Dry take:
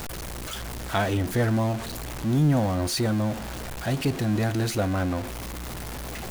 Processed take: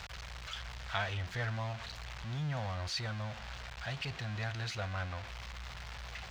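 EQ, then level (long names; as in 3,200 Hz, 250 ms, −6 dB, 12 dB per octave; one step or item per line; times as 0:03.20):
high-pass filter 50 Hz
high-frequency loss of the air 190 metres
guitar amp tone stack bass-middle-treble 10-0-10
+1.0 dB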